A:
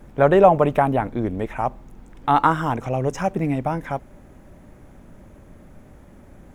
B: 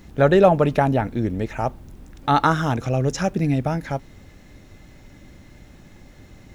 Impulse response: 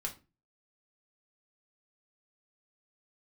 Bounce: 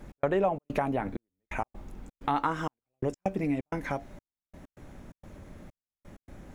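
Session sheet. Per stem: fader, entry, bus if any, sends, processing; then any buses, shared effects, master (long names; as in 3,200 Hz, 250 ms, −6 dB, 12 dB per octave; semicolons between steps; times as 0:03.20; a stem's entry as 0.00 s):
−2.0 dB, 0.00 s, no send, low-pass filter 3,800 Hz 6 dB per octave; high-shelf EQ 2,500 Hz +8 dB
+0.5 dB, 0.00 s, no send, brickwall limiter −15 dBFS, peak gain reduction 11.5 dB; stiff-string resonator 94 Hz, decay 0.21 s, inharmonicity 0.002; multiband upward and downward expander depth 40%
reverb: not used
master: gate pattern "x.xxx.xxxx..." 129 BPM −60 dB; downward compressor 2.5 to 1, threshold −29 dBFS, peak gain reduction 13.5 dB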